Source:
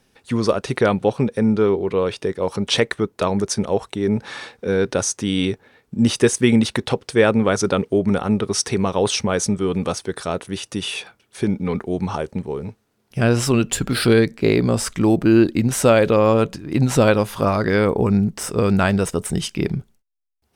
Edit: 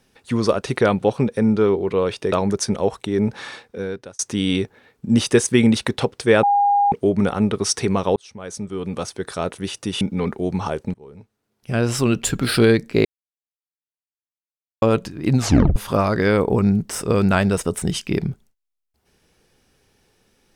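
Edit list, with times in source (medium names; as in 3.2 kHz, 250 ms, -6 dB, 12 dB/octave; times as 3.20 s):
2.32–3.21 s: delete
4.24–5.08 s: fade out
7.32–7.81 s: bleep 811 Hz -13 dBFS
9.05–10.39 s: fade in
10.90–11.49 s: delete
12.42–13.74 s: fade in, from -21.5 dB
14.53–16.30 s: mute
16.87 s: tape stop 0.37 s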